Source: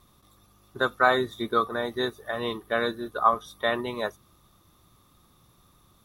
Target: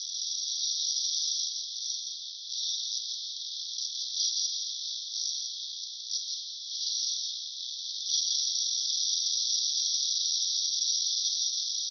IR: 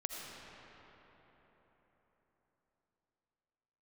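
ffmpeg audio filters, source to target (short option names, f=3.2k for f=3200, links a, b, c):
-filter_complex "[0:a]aeval=exprs='val(0)+0.5*0.0562*sgn(val(0))':c=same,alimiter=limit=-12dB:level=0:latency=1:release=343,asetrate=22403,aresample=44100,asplit=2[a][b];[b]adelay=48,volume=-10.5dB[c];[a][c]amix=inputs=2:normalize=0,aecho=1:1:167:0.562,asplit=2[d][e];[1:a]atrim=start_sample=2205[f];[e][f]afir=irnorm=-1:irlink=0,volume=-2dB[g];[d][g]amix=inputs=2:normalize=0,dynaudnorm=f=200:g=7:m=5dB,asuperpass=centerf=4500:order=20:qfactor=1.7"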